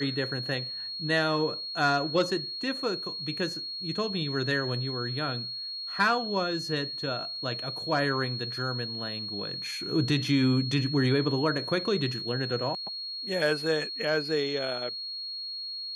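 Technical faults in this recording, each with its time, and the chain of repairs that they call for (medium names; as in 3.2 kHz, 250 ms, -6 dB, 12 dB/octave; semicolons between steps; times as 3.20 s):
whine 4.3 kHz -34 dBFS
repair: band-stop 4.3 kHz, Q 30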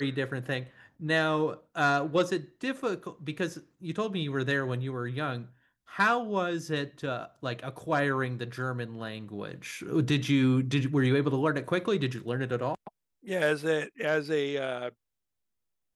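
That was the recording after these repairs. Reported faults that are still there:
nothing left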